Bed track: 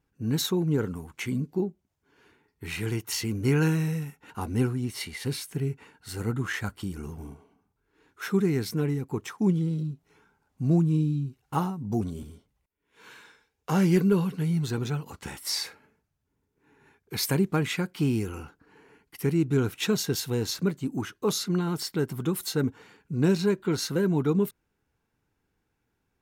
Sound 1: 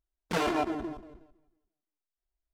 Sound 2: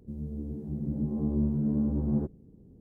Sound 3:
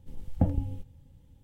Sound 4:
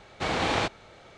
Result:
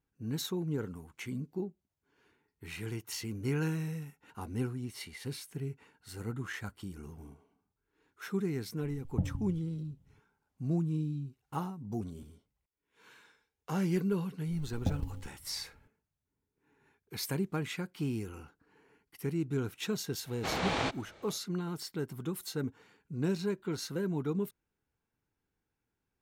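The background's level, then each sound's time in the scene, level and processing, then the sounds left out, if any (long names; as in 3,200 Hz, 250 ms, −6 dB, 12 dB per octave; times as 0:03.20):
bed track −9 dB
0:08.77: mix in 3 −15 dB + parametric band 140 Hz +13.5 dB 1.5 octaves
0:14.45: mix in 3 −7.5 dB + floating-point word with a short mantissa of 4 bits
0:20.23: mix in 4 −6 dB, fades 0.05 s
not used: 1, 2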